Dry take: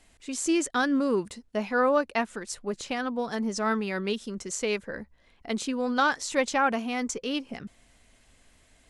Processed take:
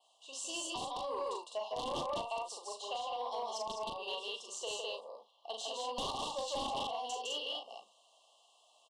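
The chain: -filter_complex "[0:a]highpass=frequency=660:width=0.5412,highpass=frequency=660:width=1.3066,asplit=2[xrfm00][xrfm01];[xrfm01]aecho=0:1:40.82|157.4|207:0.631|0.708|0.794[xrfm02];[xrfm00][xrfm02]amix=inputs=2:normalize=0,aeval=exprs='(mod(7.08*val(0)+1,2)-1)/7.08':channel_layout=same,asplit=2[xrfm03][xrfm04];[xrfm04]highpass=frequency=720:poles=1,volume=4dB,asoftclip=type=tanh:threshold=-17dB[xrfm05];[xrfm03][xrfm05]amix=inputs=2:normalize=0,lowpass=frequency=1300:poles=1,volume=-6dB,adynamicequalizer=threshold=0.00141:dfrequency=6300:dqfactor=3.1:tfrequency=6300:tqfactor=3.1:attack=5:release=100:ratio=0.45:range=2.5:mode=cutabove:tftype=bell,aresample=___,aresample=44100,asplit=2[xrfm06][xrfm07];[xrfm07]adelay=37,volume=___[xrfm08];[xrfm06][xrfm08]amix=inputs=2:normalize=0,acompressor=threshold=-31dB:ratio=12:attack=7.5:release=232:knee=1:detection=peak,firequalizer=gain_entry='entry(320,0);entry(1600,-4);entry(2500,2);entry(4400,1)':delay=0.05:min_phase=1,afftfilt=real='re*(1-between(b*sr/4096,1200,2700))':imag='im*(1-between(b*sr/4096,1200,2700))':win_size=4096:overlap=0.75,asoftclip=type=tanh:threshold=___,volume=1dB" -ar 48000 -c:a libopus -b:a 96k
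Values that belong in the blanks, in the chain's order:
22050, -10dB, -28dB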